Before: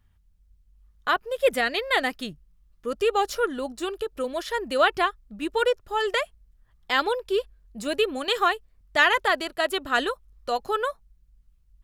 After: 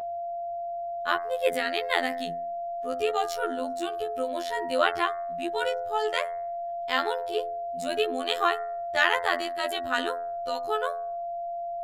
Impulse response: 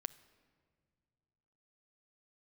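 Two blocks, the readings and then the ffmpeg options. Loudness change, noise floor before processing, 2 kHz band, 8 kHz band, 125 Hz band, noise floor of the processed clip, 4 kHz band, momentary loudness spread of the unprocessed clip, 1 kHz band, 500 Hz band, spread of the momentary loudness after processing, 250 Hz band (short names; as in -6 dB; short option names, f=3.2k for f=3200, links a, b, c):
-3.5 dB, -62 dBFS, -3.5 dB, -3.5 dB, n/a, -34 dBFS, -3.5 dB, 12 LU, -1.0 dB, -1.5 dB, 9 LU, -3.5 dB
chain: -af "bandreject=f=62.71:t=h:w=4,bandreject=f=125.42:t=h:w=4,bandreject=f=188.13:t=h:w=4,bandreject=f=250.84:t=h:w=4,bandreject=f=313.55:t=h:w=4,bandreject=f=376.26:t=h:w=4,bandreject=f=438.97:t=h:w=4,bandreject=f=501.68:t=h:w=4,bandreject=f=564.39:t=h:w=4,bandreject=f=627.1:t=h:w=4,bandreject=f=689.81:t=h:w=4,bandreject=f=752.52:t=h:w=4,bandreject=f=815.23:t=h:w=4,bandreject=f=877.94:t=h:w=4,bandreject=f=940.65:t=h:w=4,bandreject=f=1.00336k:t=h:w=4,bandreject=f=1.06607k:t=h:w=4,bandreject=f=1.12878k:t=h:w=4,bandreject=f=1.19149k:t=h:w=4,bandreject=f=1.2542k:t=h:w=4,bandreject=f=1.31691k:t=h:w=4,bandreject=f=1.37962k:t=h:w=4,bandreject=f=1.44233k:t=h:w=4,bandreject=f=1.50504k:t=h:w=4,bandreject=f=1.56775k:t=h:w=4,bandreject=f=1.63046k:t=h:w=4,bandreject=f=1.69317k:t=h:w=4,bandreject=f=1.75588k:t=h:w=4,bandreject=f=1.81859k:t=h:w=4,bandreject=f=1.8813k:t=h:w=4,bandreject=f=1.94401k:t=h:w=4,bandreject=f=2.00672k:t=h:w=4,bandreject=f=2.06943k:t=h:w=4,bandreject=f=2.13214k:t=h:w=4,aeval=exprs='val(0)+0.0355*sin(2*PI*700*n/s)':c=same,afftfilt=real='hypot(re,im)*cos(PI*b)':imag='0':win_size=2048:overlap=0.75"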